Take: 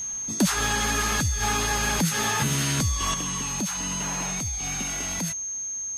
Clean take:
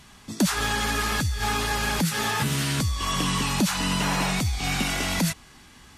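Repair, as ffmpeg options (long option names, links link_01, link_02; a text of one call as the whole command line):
ffmpeg -i in.wav -af "bandreject=frequency=6400:width=30,asetnsamples=nb_out_samples=441:pad=0,asendcmd='3.14 volume volume 7.5dB',volume=0dB" out.wav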